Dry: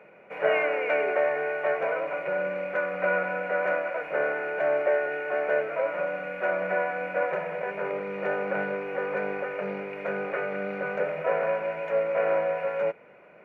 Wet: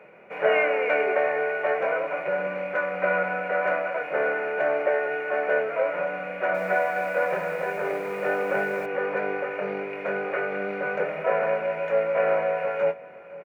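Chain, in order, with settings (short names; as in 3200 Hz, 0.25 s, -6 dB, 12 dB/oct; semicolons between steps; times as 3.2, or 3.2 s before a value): doubler 23 ms -8 dB; outdoor echo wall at 87 m, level -18 dB; 6.28–8.86 lo-fi delay 0.263 s, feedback 35%, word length 8-bit, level -8 dB; gain +2 dB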